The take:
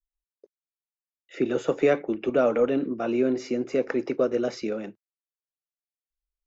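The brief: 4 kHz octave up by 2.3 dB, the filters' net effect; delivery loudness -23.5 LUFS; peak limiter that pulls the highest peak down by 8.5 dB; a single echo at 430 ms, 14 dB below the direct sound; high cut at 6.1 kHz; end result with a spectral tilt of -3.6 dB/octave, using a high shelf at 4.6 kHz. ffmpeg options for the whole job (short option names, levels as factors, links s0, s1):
-af "lowpass=6100,equalizer=f=4000:t=o:g=8,highshelf=f=4600:g=-7.5,alimiter=limit=0.141:level=0:latency=1,aecho=1:1:430:0.2,volume=1.68"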